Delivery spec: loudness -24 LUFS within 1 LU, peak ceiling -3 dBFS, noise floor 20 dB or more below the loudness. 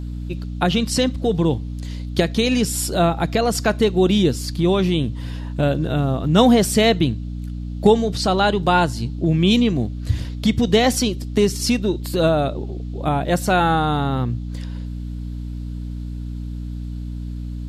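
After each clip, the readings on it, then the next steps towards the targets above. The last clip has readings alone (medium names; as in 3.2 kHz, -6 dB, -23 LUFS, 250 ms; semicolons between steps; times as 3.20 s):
hum 60 Hz; highest harmonic 300 Hz; hum level -26 dBFS; loudness -19.5 LUFS; peak level -2.5 dBFS; loudness target -24.0 LUFS
-> de-hum 60 Hz, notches 5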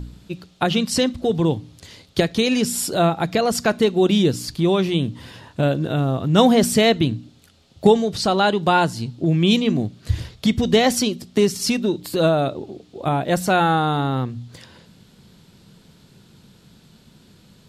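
hum not found; loudness -19.5 LUFS; peak level -2.5 dBFS; loudness target -24.0 LUFS
-> trim -4.5 dB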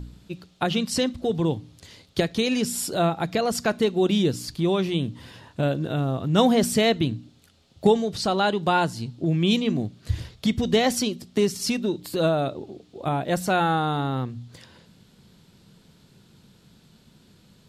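loudness -24.0 LUFS; peak level -7.0 dBFS; noise floor -57 dBFS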